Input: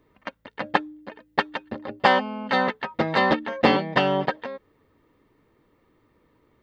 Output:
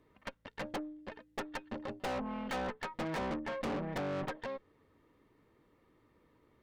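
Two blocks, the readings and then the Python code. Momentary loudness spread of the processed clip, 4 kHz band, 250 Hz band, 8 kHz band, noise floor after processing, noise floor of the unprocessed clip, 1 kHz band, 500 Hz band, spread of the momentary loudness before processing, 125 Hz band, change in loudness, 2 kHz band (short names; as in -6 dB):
10 LU, -17.5 dB, -12.0 dB, n/a, -70 dBFS, -65 dBFS, -17.0 dB, -14.0 dB, 18 LU, -11.0 dB, -16.0 dB, -17.5 dB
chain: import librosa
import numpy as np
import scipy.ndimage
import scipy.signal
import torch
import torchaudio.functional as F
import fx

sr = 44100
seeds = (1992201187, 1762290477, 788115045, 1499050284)

y = fx.env_lowpass_down(x, sr, base_hz=640.0, full_db=-16.5)
y = fx.tube_stage(y, sr, drive_db=32.0, bias=0.6)
y = F.gain(torch.from_numpy(y), -2.0).numpy()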